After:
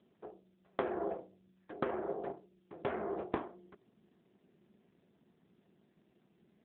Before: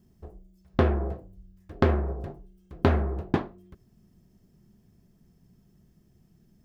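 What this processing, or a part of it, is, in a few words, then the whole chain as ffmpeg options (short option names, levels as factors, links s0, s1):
voicemail: -af "highpass=370,lowpass=3200,acompressor=threshold=0.0224:ratio=8,volume=1.58" -ar 8000 -c:a libopencore_amrnb -b:a 7400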